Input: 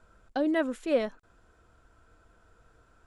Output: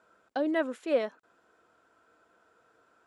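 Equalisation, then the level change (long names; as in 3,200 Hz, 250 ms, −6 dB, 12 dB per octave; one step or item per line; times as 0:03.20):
high-pass filter 300 Hz 12 dB per octave
high-shelf EQ 5,200 Hz −6.5 dB
0.0 dB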